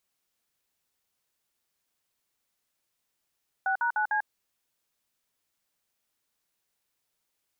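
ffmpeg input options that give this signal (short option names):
-f lavfi -i "aevalsrc='0.0473*clip(min(mod(t,0.15),0.095-mod(t,0.15))/0.002,0,1)*(eq(floor(t/0.15),0)*(sin(2*PI*770*mod(t,0.15))+sin(2*PI*1477*mod(t,0.15)))+eq(floor(t/0.15),1)*(sin(2*PI*941*mod(t,0.15))+sin(2*PI*1477*mod(t,0.15)))+eq(floor(t/0.15),2)*(sin(2*PI*852*mod(t,0.15))+sin(2*PI*1477*mod(t,0.15)))+eq(floor(t/0.15),3)*(sin(2*PI*852*mod(t,0.15))+sin(2*PI*1633*mod(t,0.15))))':d=0.6:s=44100"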